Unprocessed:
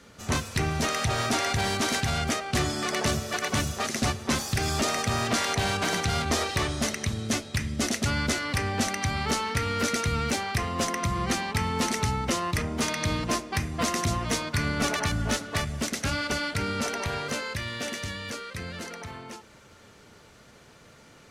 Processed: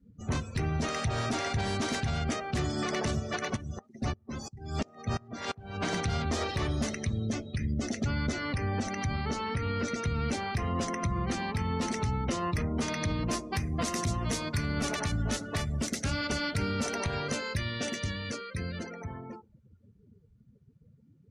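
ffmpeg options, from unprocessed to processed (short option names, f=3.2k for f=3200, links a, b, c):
-filter_complex "[0:a]asplit=3[a][b][c];[a]afade=t=out:st=3.55:d=0.02[d];[b]aeval=exprs='val(0)*pow(10,-27*if(lt(mod(-2.9*n/s,1),2*abs(-2.9)/1000),1-mod(-2.9*n/s,1)/(2*abs(-2.9)/1000),(mod(-2.9*n/s,1)-2*abs(-2.9)/1000)/(1-2*abs(-2.9)/1000))/20)':c=same,afade=t=in:st=3.55:d=0.02,afade=t=out:st=5.83:d=0.02[e];[c]afade=t=in:st=5.83:d=0.02[f];[d][e][f]amix=inputs=3:normalize=0,asettb=1/sr,asplit=3[g][h][i];[g]atrim=end=7.184[j];[h]atrim=start=7.18:end=10.05,asetpts=PTS-STARTPTS,afade=t=in:d=0.004:c=qsin,afade=t=out:st=2.866:d=0.004:c=qsin,acompressor=threshold=-27dB:ratio=4:attack=3.2:release=140:knee=1:detection=peak[k];[i]atrim=start=10.046[l];[j][k]acrossfade=d=0.004:c1=hsin:c2=qsin[m];[m][l]acrossfade=d=0.004:c1=qsin:c2=hsin,asettb=1/sr,asplit=3[n][o][p];[n]atrim=end=13.284[q];[o]atrim=start=13.28:end=18.83,asetpts=PTS-STARTPTS,afade=t=in:d=0.004:c=qsin,afade=t=out:st=5.546:d=0.004:c=qsin,highshelf=f=4.2k:g=6[r];[p]atrim=start=18.826[s];[q][r]acrossfade=d=0.004:c1=hsin:c2=qsin[t];[t][s]acrossfade=d=0.004:c1=qsin:c2=hsin,lowshelf=f=430:g=7,afftdn=nr=33:nf=-38,alimiter=limit=-18dB:level=0:latency=1:release=145,volume=-3.5dB"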